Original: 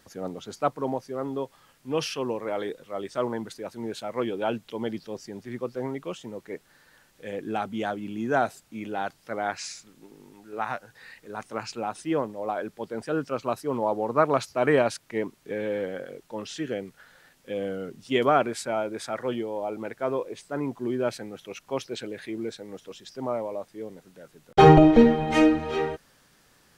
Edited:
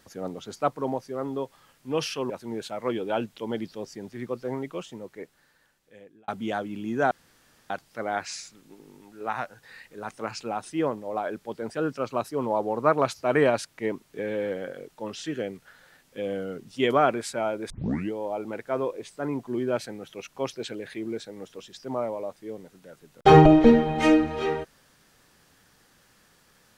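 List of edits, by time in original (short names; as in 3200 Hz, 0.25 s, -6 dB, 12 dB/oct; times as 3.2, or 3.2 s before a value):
2.3–3.62 cut
6.03–7.6 fade out
8.43–9.02 room tone
19.02 tape start 0.41 s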